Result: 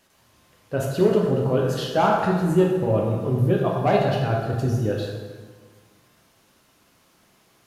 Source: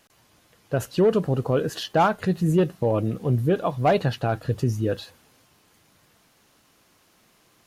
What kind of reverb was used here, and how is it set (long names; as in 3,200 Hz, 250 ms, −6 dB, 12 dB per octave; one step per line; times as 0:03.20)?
dense smooth reverb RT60 1.6 s, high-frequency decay 0.65×, DRR −2 dB
level −3 dB